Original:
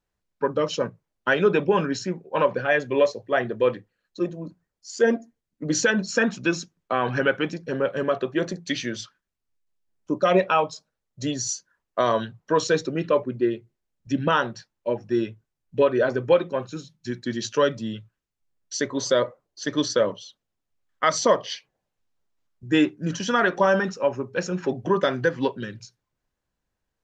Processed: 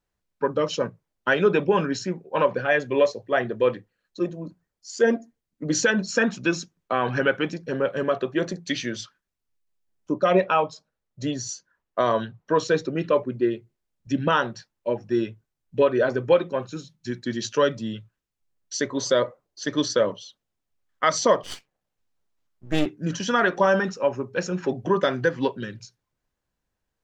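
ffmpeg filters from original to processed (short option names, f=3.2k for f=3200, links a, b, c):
-filter_complex "[0:a]asettb=1/sr,asplit=3[a][b][c];[a]atrim=end=10.124[d];[b]atrim=start=10.12:end=12.96,asetpts=PTS-STARTPTS,afade=t=in:d=0.004:c=qsin,afade=t=out:st=2.836:d=0.004:c=qsin,highshelf=f=5.1k:g=-9[e];[c]atrim=start=12.956[f];[d][e]acrossfade=d=0.004:c1=hsin:c2=qsin[g];[g][f]acrossfade=d=0.004:c1=qsin:c2=hsin,asettb=1/sr,asplit=3[h][i][j];[h]atrim=end=21.434[k];[i]atrim=start=21.43:end=22.86,asetpts=PTS-STARTPTS,afade=t=in:d=0.004:c=qsin,afade=t=out:st=1.426:d=0.004:c=qsin,aeval=exprs='max(val(0),0)':c=same[l];[j]atrim=start=22.856[m];[k][l]acrossfade=d=0.004:c1=hsin:c2=qsin[n];[n][m]acrossfade=d=0.004:c1=qsin:c2=hsin"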